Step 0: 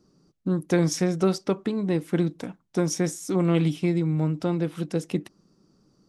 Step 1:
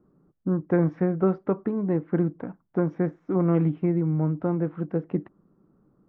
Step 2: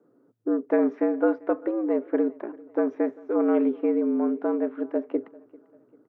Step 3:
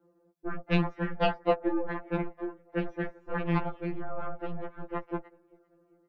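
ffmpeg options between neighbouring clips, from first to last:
ffmpeg -i in.wav -af "lowpass=frequency=1600:width=0.5412,lowpass=frequency=1600:width=1.3066" out.wav
ffmpeg -i in.wav -af "afreqshift=110,aecho=1:1:394|788|1182:0.0708|0.0311|0.0137" out.wav
ffmpeg -i in.wav -af "aeval=exprs='0.282*(cos(1*acos(clip(val(0)/0.282,-1,1)))-cos(1*PI/2))+0.112*(cos(4*acos(clip(val(0)/0.282,-1,1)))-cos(4*PI/2))+0.0794*(cos(6*acos(clip(val(0)/0.282,-1,1)))-cos(6*PI/2))':channel_layout=same,afftfilt=real='re*2.83*eq(mod(b,8),0)':imag='im*2.83*eq(mod(b,8),0)':win_size=2048:overlap=0.75" out.wav

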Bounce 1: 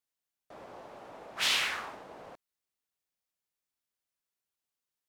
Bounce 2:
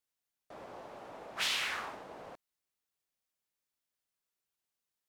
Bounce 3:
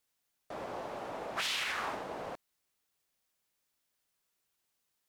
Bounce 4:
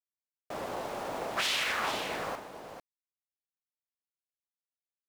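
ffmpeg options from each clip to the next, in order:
ffmpeg -i in.wav -af "acompressor=threshold=-31dB:ratio=3" out.wav
ffmpeg -i in.wav -af "alimiter=level_in=8.5dB:limit=-24dB:level=0:latency=1:release=202,volume=-8.5dB,volume=7.5dB" out.wav
ffmpeg -i in.wav -af "aeval=exprs='val(0)*gte(abs(val(0)),0.00473)':channel_layout=same,aecho=1:1:446:0.376,volume=4dB" out.wav

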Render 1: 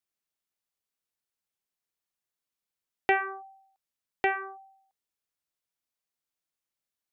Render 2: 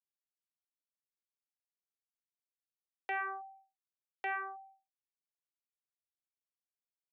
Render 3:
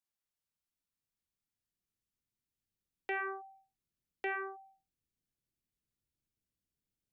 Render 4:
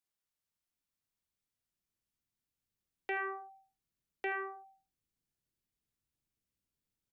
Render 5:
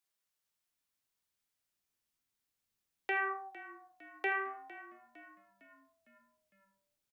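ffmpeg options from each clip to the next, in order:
ffmpeg -i in.wav -af "highpass=frequency=460:width=0.5412,highpass=frequency=460:width=1.3066,anlmdn=0.000631,areverse,acompressor=threshold=-33dB:ratio=8,areverse,volume=-1dB" out.wav
ffmpeg -i in.wav -af "asubboost=boost=11.5:cutoff=250,volume=1.5dB" out.wav
ffmpeg -i in.wav -af "aecho=1:1:79:0.188" out.wav
ffmpeg -i in.wav -filter_complex "[0:a]lowshelf=frequency=320:gain=-8.5,asplit=6[link_01][link_02][link_03][link_04][link_05][link_06];[link_02]adelay=456,afreqshift=-38,volume=-17dB[link_07];[link_03]adelay=912,afreqshift=-76,volume=-22.7dB[link_08];[link_04]adelay=1368,afreqshift=-114,volume=-28.4dB[link_09];[link_05]adelay=1824,afreqshift=-152,volume=-34dB[link_10];[link_06]adelay=2280,afreqshift=-190,volume=-39.7dB[link_11];[link_01][link_07][link_08][link_09][link_10][link_11]amix=inputs=6:normalize=0,flanger=delay=8.7:depth=7.5:regen=74:speed=0.37:shape=triangular,volume=8.5dB" out.wav

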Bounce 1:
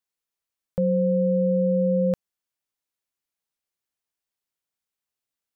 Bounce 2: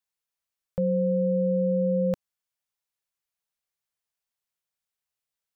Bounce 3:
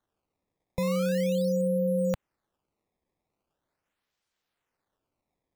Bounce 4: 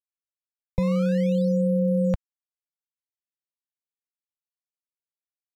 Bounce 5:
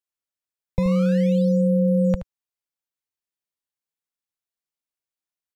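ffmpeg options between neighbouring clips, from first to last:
ffmpeg -i in.wav -af "equalizer=frequency=300:width_type=o:width=0.55:gain=-12.5,volume=-1dB" out.wav
ffmpeg -i in.wav -filter_complex "[0:a]acrossover=split=140|650[link_01][link_02][link_03];[link_02]alimiter=level_in=7.5dB:limit=-24dB:level=0:latency=1,volume=-7.5dB[link_04];[link_03]acrusher=samples=17:mix=1:aa=0.000001:lfo=1:lforange=27.2:lforate=0.41[link_05];[link_01][link_04][link_05]amix=inputs=3:normalize=0,volume=4dB" out.wav
ffmpeg -i in.wav -af "aemphasis=mode=reproduction:type=bsi,aeval=exprs='val(0)*gte(abs(val(0)),0.00316)':channel_layout=same" out.wav
ffmpeg -i in.wav -af "aecho=1:1:75:0.251,volume=2dB" out.wav

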